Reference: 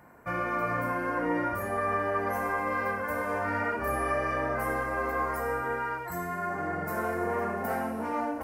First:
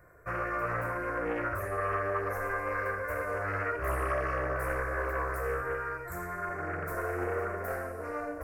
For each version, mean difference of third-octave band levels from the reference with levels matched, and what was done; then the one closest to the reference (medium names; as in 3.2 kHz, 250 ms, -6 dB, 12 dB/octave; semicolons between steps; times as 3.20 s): 3.5 dB: bass shelf 90 Hz +11.5 dB; static phaser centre 860 Hz, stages 6; loudspeaker Doppler distortion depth 0.49 ms; trim -1 dB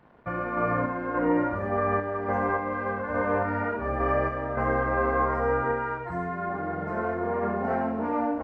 7.0 dB: random-step tremolo 3.5 Hz; crossover distortion -60 dBFS; tape spacing loss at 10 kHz 38 dB; doubling 30 ms -13 dB; trim +8 dB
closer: first